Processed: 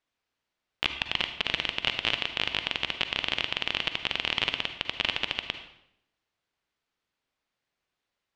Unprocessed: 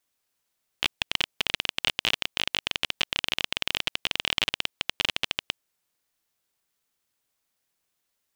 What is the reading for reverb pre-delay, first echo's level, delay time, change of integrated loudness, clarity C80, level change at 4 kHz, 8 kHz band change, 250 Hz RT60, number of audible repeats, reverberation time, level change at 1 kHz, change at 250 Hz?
39 ms, none, none, -1.0 dB, 11.5 dB, -1.5 dB, -11.0 dB, 0.90 s, none, 0.75 s, +0.5 dB, +0.5 dB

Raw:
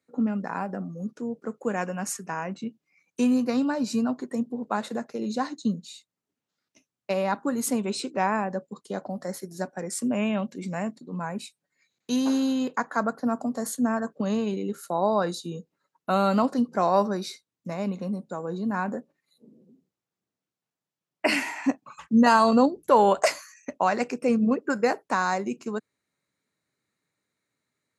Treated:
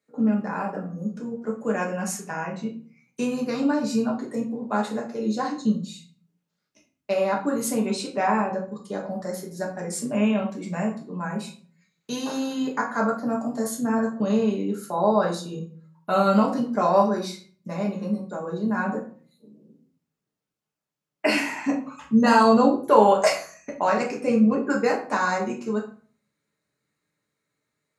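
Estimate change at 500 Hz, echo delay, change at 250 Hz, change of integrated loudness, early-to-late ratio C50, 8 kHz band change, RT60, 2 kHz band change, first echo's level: +3.5 dB, none, +2.0 dB, +2.0 dB, 8.5 dB, +1.0 dB, 0.45 s, +2.0 dB, none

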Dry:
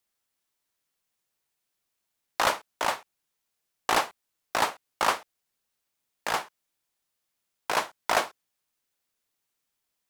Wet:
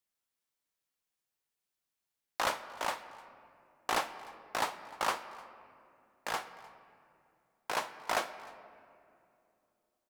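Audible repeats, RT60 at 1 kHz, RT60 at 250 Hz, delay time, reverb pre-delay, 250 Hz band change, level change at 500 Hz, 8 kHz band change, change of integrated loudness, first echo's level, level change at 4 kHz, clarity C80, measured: 1, 2.4 s, 3.4 s, 0.303 s, 4 ms, -7.0 dB, -7.5 dB, -7.5 dB, -7.5 dB, -23.0 dB, -7.5 dB, 13.0 dB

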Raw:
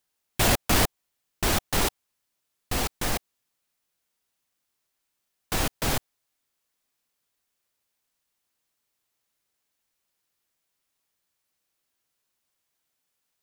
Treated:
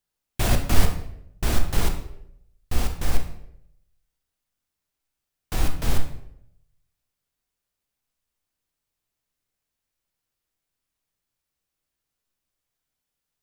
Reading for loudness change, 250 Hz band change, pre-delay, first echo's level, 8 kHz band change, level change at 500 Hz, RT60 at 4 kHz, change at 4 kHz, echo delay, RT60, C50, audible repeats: -1.5 dB, -0.5 dB, 16 ms, none, -5.0 dB, -2.5 dB, 0.55 s, -5.0 dB, none, 0.75 s, 8.0 dB, none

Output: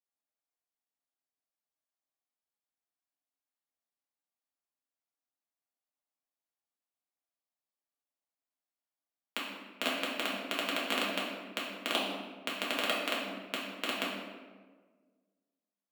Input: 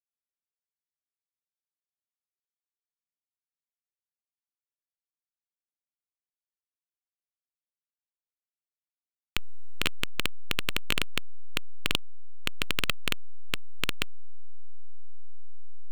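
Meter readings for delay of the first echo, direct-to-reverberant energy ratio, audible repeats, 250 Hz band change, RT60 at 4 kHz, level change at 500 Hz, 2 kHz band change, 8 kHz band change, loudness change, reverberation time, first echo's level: none, -6.0 dB, none, +2.5 dB, 0.85 s, +5.5 dB, -2.0 dB, -4.0 dB, -2.0 dB, 1.5 s, none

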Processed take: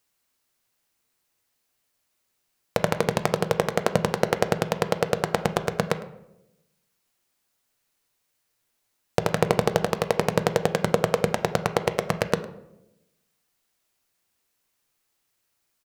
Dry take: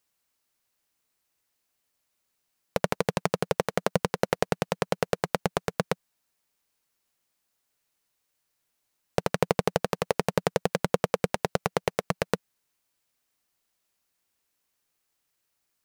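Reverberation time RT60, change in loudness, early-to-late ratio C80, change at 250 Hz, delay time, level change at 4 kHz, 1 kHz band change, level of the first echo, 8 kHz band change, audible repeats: 0.90 s, +3.5 dB, 14.5 dB, +3.5 dB, 0.106 s, +3.5 dB, +3.5 dB, -19.5 dB, +3.0 dB, 1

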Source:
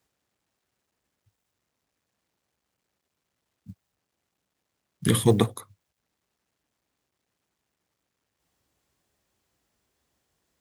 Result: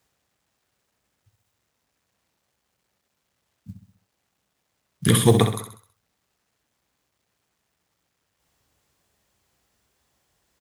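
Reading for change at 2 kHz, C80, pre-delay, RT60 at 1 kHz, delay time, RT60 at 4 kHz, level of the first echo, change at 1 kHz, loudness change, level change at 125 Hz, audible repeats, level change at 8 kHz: +5.5 dB, none, none, none, 65 ms, none, -8.0 dB, +5.5 dB, +3.5 dB, +5.0 dB, 5, +6.0 dB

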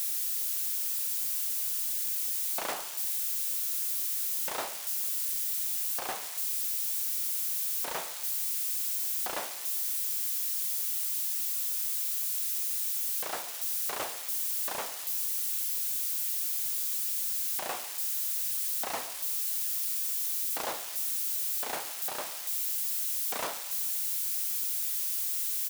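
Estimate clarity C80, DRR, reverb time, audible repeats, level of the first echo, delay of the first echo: none, none, none, 3, -19.0 dB, 0.14 s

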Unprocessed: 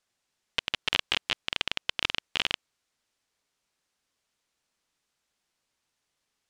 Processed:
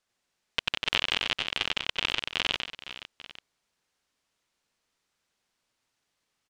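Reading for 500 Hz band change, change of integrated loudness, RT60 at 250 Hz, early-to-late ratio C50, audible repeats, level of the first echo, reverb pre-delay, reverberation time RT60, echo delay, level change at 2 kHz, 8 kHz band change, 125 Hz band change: +2.0 dB, +1.0 dB, none, none, 4, -3.0 dB, none, none, 92 ms, +1.5 dB, 0.0 dB, +2.0 dB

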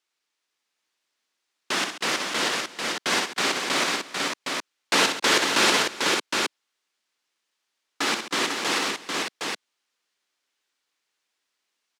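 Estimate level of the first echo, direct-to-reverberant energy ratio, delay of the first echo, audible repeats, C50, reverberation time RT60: -7.0 dB, none, 64 ms, 5, none, none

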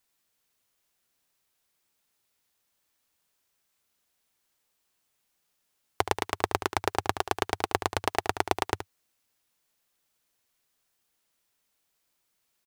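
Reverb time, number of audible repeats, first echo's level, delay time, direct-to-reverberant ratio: none, 1, -11.0 dB, 73 ms, none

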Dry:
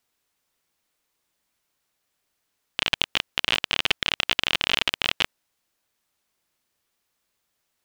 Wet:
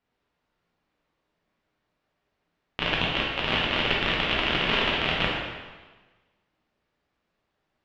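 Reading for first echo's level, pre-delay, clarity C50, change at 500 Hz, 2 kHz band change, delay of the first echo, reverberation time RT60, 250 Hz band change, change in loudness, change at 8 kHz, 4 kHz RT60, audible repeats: none, 5 ms, 0.0 dB, +7.0 dB, +0.5 dB, none, 1.3 s, +8.5 dB, -1.0 dB, under -10 dB, 1.2 s, none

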